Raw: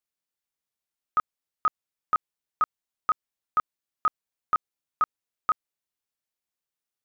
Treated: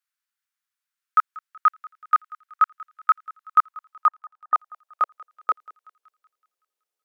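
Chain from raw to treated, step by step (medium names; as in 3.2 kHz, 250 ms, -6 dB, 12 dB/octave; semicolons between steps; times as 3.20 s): wow and flutter 24 cents; 4.06–4.54 s: brick-wall FIR band-pass 300–1800 Hz; thinning echo 188 ms, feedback 62%, high-pass 1.1 kHz, level -19 dB; high-pass sweep 1.4 kHz -> 450 Hz, 3.14–5.61 s; trim +1 dB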